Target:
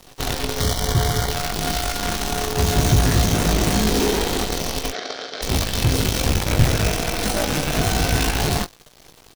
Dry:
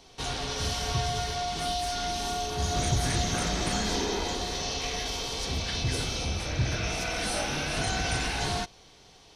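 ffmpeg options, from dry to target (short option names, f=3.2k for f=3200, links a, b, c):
-filter_complex "[0:a]asettb=1/sr,asplit=3[a][b][c];[a]atrim=end=6.014[d];[b]atrim=start=6.01:end=6.73,asetpts=PTS-STARTPTS,afade=t=in:d=0.004:c=qsin,afade=t=out:st=0.716:d=0.004:c=qsin,aeval=exprs='0.15*(cos(1*acos(clip(val(0)/0.15,-1,1)))-cos(1*PI/2))+0.0266*(cos(4*acos(clip(val(0)/0.15,-1,1)))-cos(4*PI/2))':c=same[e];[c]atrim=start=6.726[f];[d][e]acrossfade=d=0.004:c1=hsin:c2=qsin[g];[g][f]acrossfade=d=0.004:c1=qsin:c2=hsin,acrossover=split=640[h][i];[h]acontrast=73[j];[i]asoftclip=type=tanh:threshold=-26.5dB[k];[j][k]amix=inputs=2:normalize=0,acrusher=bits=5:dc=4:mix=0:aa=0.000001,asettb=1/sr,asplit=3[l][m][n];[l]atrim=end=0.604[o];[m]atrim=start=0.6:end=1.31,asetpts=PTS-STARTPTS,afade=t=in:d=0.004:c=qsin,afade=t=out:st=0.706:d=0.004:c=qsin,asuperstop=centerf=2600:order=4:qfactor=4.8[p];[n]atrim=start=1.306[q];[o][p]acrossfade=d=0.004:c1=hsin:c2=qsin[r];[r][q]acrossfade=d=0.004:c1=qsin:c2=hsin,asplit=3[s][t][u];[s]afade=t=out:st=4.91:d=0.02[v];[t]highpass=430,equalizer=f=630:t=q:w=4:g=5,equalizer=f=940:t=q:w=4:g=-10,equalizer=f=1.5k:t=q:w=4:g=6,equalizer=f=2.7k:t=q:w=4:g=-8,lowpass=f=4.9k:w=0.5412,lowpass=f=4.9k:w=1.3066,afade=t=in:st=4.91:d=0.02,afade=t=out:st=5.41:d=0.02[w];[u]afade=t=in:st=5.41:d=0.02[x];[v][w][x]amix=inputs=3:normalize=0,asplit=2[y][z];[z]adelay=19,volume=-8.5dB[aa];[y][aa]amix=inputs=2:normalize=0,volume=4dB"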